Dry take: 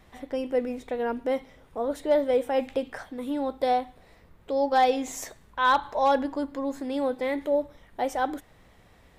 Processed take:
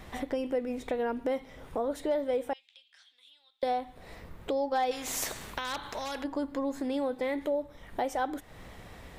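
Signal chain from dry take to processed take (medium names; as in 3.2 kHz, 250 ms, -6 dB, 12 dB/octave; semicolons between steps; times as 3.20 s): compression 3:1, threshold -41 dBFS, peak gain reduction 17.5 dB; 2.53–3.63 s: ladder band-pass 3.9 kHz, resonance 55%; 4.91–6.24 s: spectrum-flattening compressor 2:1; trim +8.5 dB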